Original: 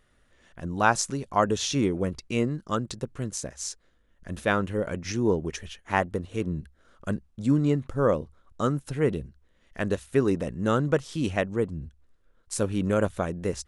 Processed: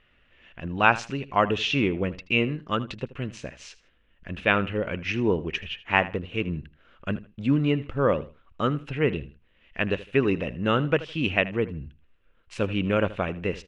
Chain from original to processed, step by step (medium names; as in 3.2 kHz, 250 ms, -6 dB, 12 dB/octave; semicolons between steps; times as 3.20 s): resonant low-pass 2.7 kHz, resonance Q 5; on a send: feedback delay 79 ms, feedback 24%, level -17 dB